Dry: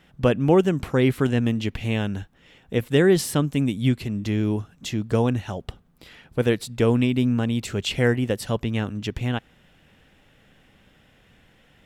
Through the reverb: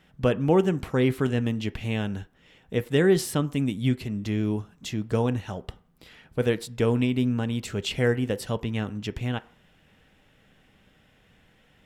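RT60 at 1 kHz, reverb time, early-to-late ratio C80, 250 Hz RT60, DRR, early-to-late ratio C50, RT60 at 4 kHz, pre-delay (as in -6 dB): 0.50 s, 0.45 s, 24.5 dB, 0.40 s, 12.0 dB, 21.0 dB, 0.45 s, 3 ms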